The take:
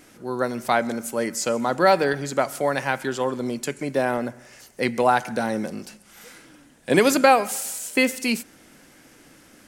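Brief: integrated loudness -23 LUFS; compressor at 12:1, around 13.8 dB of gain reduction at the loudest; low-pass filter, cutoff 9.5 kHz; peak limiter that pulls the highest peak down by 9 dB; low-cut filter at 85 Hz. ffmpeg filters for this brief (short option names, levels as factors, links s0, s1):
-af "highpass=85,lowpass=9500,acompressor=threshold=0.0631:ratio=12,volume=2.82,alimiter=limit=0.266:level=0:latency=1"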